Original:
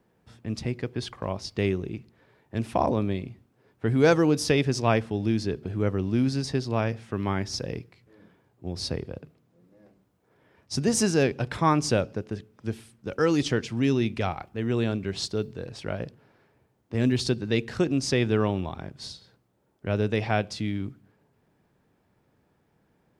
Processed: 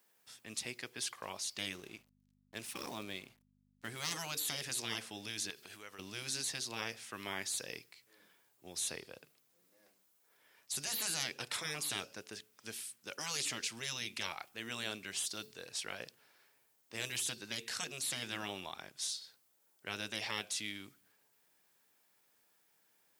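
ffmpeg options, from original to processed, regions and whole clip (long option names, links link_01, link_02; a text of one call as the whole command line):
ffmpeg -i in.wav -filter_complex "[0:a]asettb=1/sr,asplit=3[link_01][link_02][link_03];[link_01]atrim=end=1.734[link_04];[link_02]atrim=start=1.73:end=4.11,asetpts=PTS-STARTPTS,afade=type=in:duration=0.004:curve=qsin,afade=type=out:start_time=2.376:duration=0.004:curve=qsin,highshelf=frequency=2100:gain=-3.5,aeval=exprs='sgn(val(0))*max(abs(val(0))-0.00237,0)':channel_layout=same,aeval=exprs='val(0)+0.00562*(sin(2*PI*50*n/s)+sin(2*PI*2*50*n/s)/2+sin(2*PI*3*50*n/s)/3+sin(2*PI*4*50*n/s)/4+sin(2*PI*5*50*n/s)/5)':channel_layout=same[link_05];[link_03]atrim=start=4.106[link_06];[link_04][link_05]acrossfade=duration=0.004:curve1=hsin:curve2=qsin[link_07];[link_07][link_06]acrossfade=duration=0.004:curve1=qsin:curve2=hsin,asettb=1/sr,asplit=3[link_08][link_09][link_10];[link_08]atrim=end=5.504[link_11];[link_09]atrim=start=5.5:end=5.99,asetpts=PTS-STARTPTS,afade=type=in:duration=0.004:curve=qsin,afade=type=out:start_time=0.486:duration=0.004:curve=qsin,tiltshelf=frequency=900:gain=-5.5,acompressor=threshold=-35dB:ratio=5:attack=3.2:release=140:knee=1:detection=peak[link_12];[link_10]atrim=start=5.986[link_13];[link_11][link_12]acrossfade=duration=0.004:curve1=hsin:curve2=qsin[link_14];[link_14][link_13]acrossfade=duration=0.004:curve1=qsin:curve2=hsin,aderivative,afftfilt=real='re*lt(hypot(re,im),0.0158)':imag='im*lt(hypot(re,im),0.0158)':win_size=1024:overlap=0.75,volume=9.5dB" out.wav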